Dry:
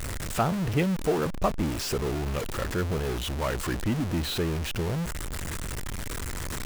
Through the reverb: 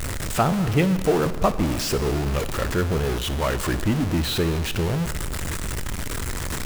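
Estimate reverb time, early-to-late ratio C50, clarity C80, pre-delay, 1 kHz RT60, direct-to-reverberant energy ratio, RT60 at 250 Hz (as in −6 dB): 1.7 s, 13.0 dB, 14.0 dB, 6 ms, 1.7 s, 11.5 dB, 1.7 s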